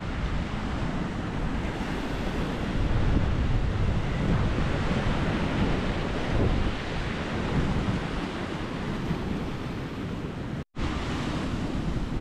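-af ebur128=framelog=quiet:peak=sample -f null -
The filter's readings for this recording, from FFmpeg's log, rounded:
Integrated loudness:
  I:         -29.5 LUFS
  Threshold: -39.5 LUFS
Loudness range:
  LRA:         4.5 LU
  Threshold: -49.1 LUFS
  LRA low:   -32.0 LUFS
  LRA high:  -27.5 LUFS
Sample peak:
  Peak:      -12.6 dBFS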